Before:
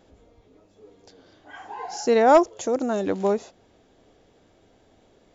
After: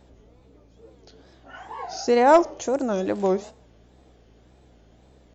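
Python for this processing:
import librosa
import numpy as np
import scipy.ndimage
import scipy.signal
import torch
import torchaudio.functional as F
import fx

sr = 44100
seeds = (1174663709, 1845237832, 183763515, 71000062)

y = fx.add_hum(x, sr, base_hz=60, snr_db=30)
y = fx.rev_schroeder(y, sr, rt60_s=0.59, comb_ms=28, drr_db=19.0)
y = fx.wow_flutter(y, sr, seeds[0], rate_hz=2.1, depth_cents=150.0)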